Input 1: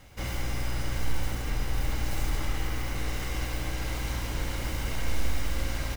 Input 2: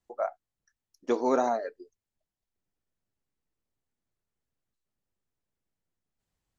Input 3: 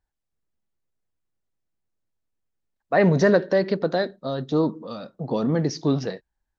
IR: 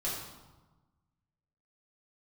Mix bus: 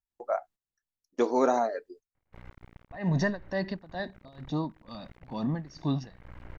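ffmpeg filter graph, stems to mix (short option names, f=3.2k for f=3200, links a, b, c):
-filter_complex "[0:a]lowpass=f=2.1k:w=0.5412,lowpass=f=2.1k:w=1.3066,bandreject=f=72.28:t=h:w=4,bandreject=f=144.56:t=h:w=4,bandreject=f=216.84:t=h:w=4,bandreject=f=289.12:t=h:w=4,bandreject=f=361.4:t=h:w=4,bandreject=f=433.68:t=h:w=4,bandreject=f=505.96:t=h:w=4,aeval=exprs='max(val(0),0)':c=same,adelay=2150,volume=-11dB[a];[1:a]adelay=100,volume=1dB[b];[2:a]aecho=1:1:1.1:0.7,tremolo=f=2.2:d=0.9,volume=-7dB,asplit=2[c][d];[d]apad=whole_len=357663[e];[a][e]sidechaincompress=threshold=-39dB:ratio=8:attack=38:release=374[f];[f][b][c]amix=inputs=3:normalize=0,agate=range=-13dB:threshold=-51dB:ratio=16:detection=peak"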